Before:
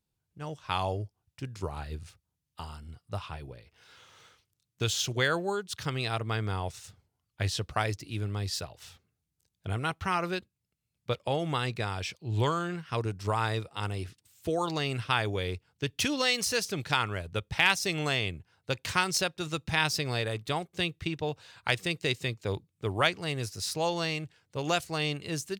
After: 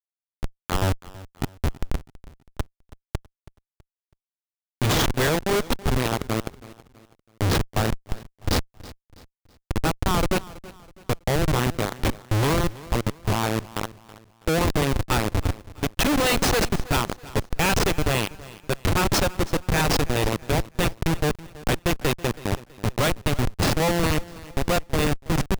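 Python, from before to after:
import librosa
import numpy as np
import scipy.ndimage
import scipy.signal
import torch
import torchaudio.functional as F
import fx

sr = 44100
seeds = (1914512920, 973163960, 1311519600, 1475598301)

p1 = fx.level_steps(x, sr, step_db=13)
p2 = x + (p1 * librosa.db_to_amplitude(2.0))
p3 = fx.schmitt(p2, sr, flips_db=-24.0)
p4 = fx.echo_feedback(p3, sr, ms=326, feedback_pct=39, wet_db=-19)
y = p4 * librosa.db_to_amplitude(8.5)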